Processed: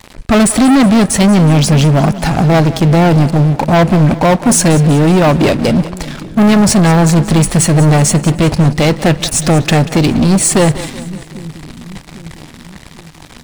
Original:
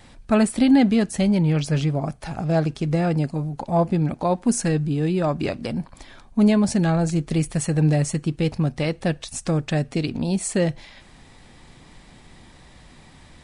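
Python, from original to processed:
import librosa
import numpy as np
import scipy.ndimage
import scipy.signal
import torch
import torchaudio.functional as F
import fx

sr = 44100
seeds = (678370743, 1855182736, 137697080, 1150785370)

y = fx.leveller(x, sr, passes=5)
y = fx.echo_split(y, sr, split_hz=320.0, low_ms=798, high_ms=186, feedback_pct=52, wet_db=-15.5)
y = y * 10.0 ** (1.0 / 20.0)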